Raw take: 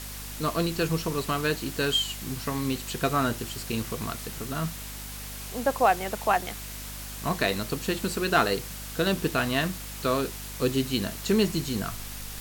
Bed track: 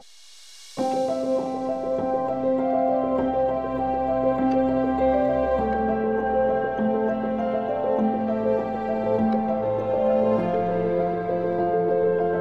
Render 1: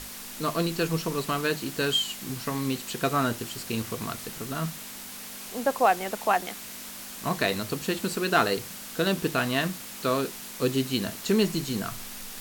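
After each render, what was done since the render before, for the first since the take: hum notches 50/100/150 Hz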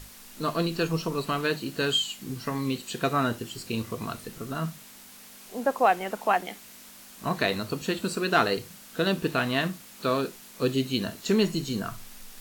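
noise print and reduce 8 dB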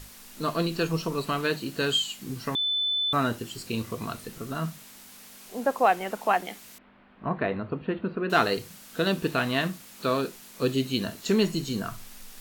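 2.55–3.13 s: bleep 3.51 kHz -23.5 dBFS; 6.78–8.30 s: Gaussian low-pass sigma 3.9 samples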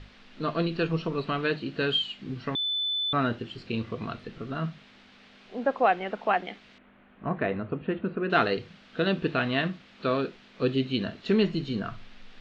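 low-pass 3.7 kHz 24 dB/octave; peaking EQ 960 Hz -4.5 dB 0.47 oct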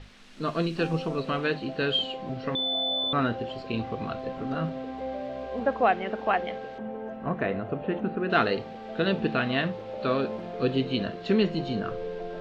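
add bed track -13.5 dB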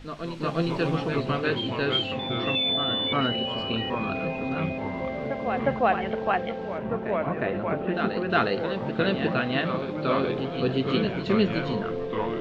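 on a send: reverse echo 359 ms -7 dB; on the sum: ever faster or slower copies 177 ms, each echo -3 st, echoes 3, each echo -6 dB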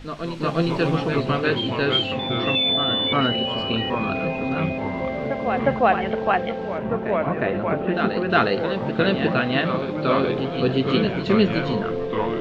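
trim +4.5 dB

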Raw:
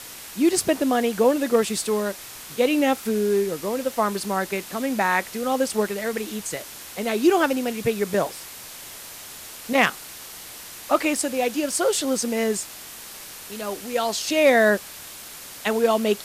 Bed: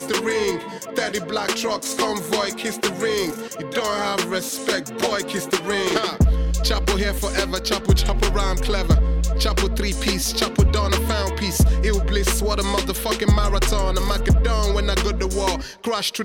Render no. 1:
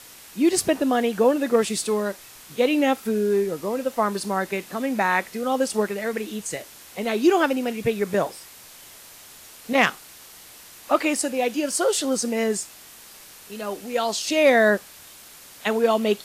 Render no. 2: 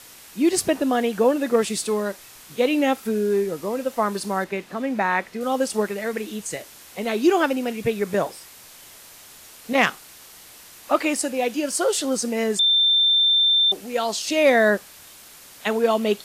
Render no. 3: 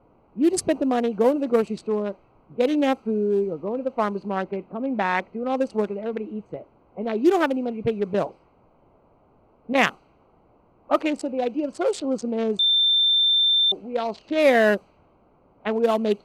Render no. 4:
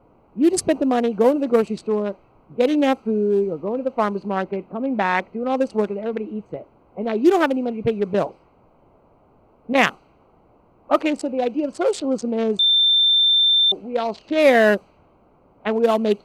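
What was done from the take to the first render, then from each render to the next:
noise print and reduce 6 dB
4.44–5.41 s: treble shelf 5.7 kHz -12 dB; 12.59–13.72 s: bleep 3.57 kHz -14.5 dBFS
local Wiener filter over 25 samples; level-controlled noise filter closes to 1.2 kHz, open at -15.5 dBFS
trim +3 dB; peak limiter -3 dBFS, peak gain reduction 0.5 dB

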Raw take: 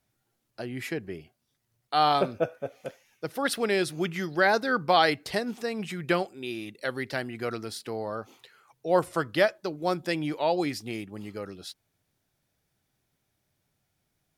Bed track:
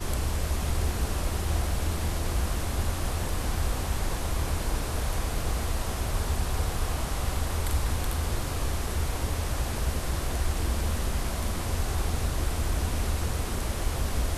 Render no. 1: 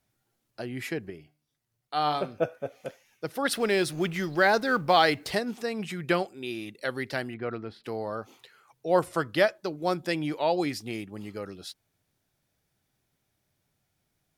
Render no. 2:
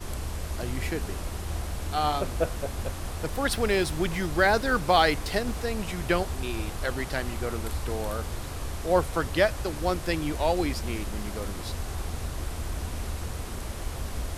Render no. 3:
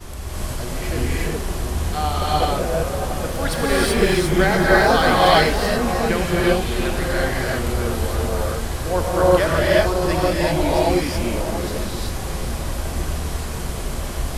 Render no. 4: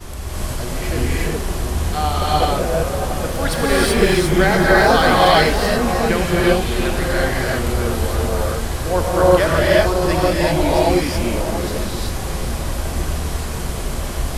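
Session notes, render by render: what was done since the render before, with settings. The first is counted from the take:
1.10–2.38 s: feedback comb 150 Hz, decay 0.43 s, mix 50%; 3.51–5.39 s: companding laws mixed up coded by mu; 7.34–7.84 s: distance through air 400 m
add bed track -5 dB
echo whose repeats swap between lows and highs 679 ms, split 1.6 kHz, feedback 55%, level -10 dB; gated-style reverb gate 410 ms rising, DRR -7 dB
trim +2.5 dB; peak limiter -2 dBFS, peak gain reduction 2.5 dB

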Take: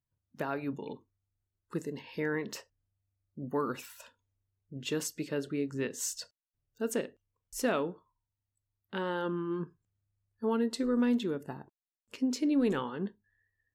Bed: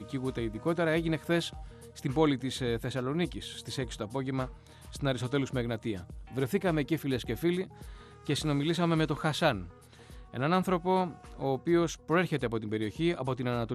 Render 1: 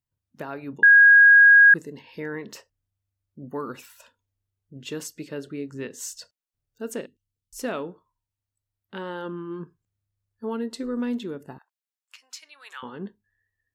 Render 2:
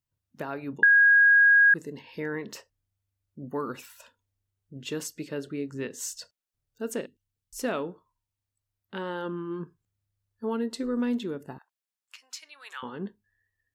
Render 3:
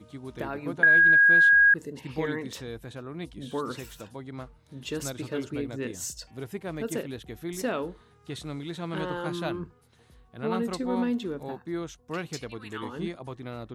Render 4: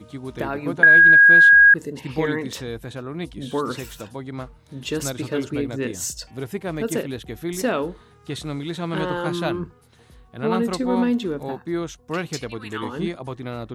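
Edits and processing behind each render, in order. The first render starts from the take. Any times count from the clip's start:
0.83–1.74 s: bleep 1.64 kHz -9 dBFS; 7.06–7.59 s: Chebyshev band-stop 250–3400 Hz; 11.58–12.83 s: high-pass 1.1 kHz 24 dB/octave
compression 4:1, threshold -17 dBFS, peak gain reduction 5.5 dB
add bed -7 dB
trim +7 dB

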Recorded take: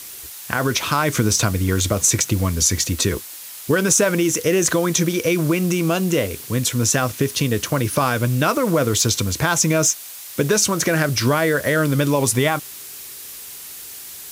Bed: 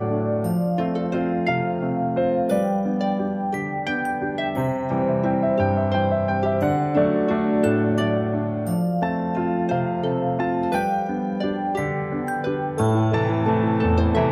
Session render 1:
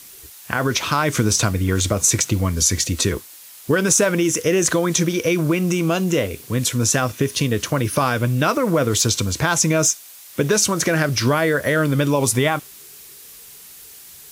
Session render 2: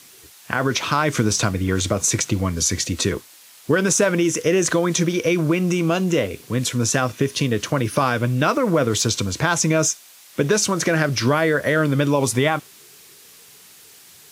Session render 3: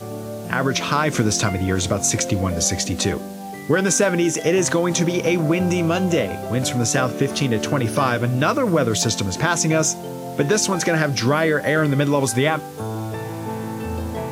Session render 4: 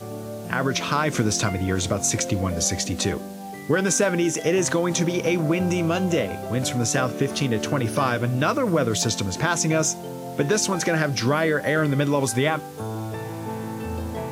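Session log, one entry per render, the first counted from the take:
noise print and reduce 6 dB
high-pass 100 Hz; treble shelf 9.2 kHz -10.5 dB
add bed -8 dB
trim -3 dB

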